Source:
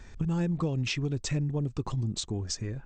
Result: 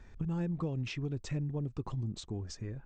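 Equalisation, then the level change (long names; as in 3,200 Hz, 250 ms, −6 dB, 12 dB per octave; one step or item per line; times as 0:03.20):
high-shelf EQ 3,700 Hz −10.5 dB
−5.5 dB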